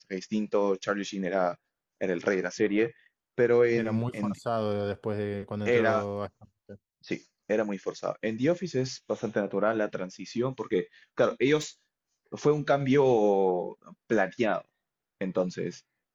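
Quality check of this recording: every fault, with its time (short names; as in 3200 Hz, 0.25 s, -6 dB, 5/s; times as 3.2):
11.57–11.66 clipped -28.5 dBFS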